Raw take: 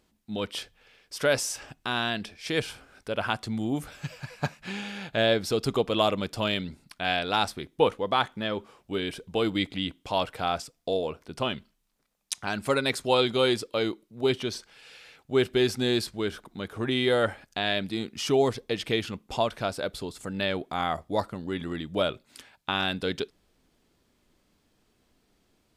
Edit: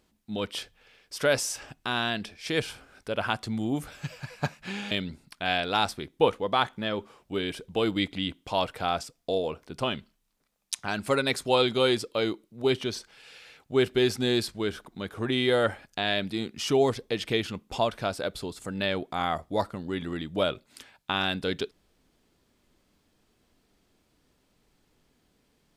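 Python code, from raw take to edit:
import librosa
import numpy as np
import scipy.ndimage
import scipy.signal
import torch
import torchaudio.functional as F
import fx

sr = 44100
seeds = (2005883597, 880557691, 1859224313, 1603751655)

y = fx.edit(x, sr, fx.cut(start_s=4.91, length_s=1.59), tone=tone)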